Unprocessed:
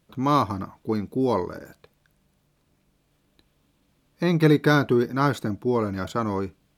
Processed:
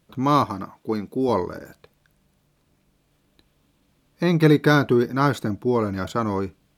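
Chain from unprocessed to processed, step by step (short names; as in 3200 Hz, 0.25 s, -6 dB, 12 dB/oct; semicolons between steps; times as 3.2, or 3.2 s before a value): 0.44–1.29 HPF 200 Hz 6 dB/oct; gain +2 dB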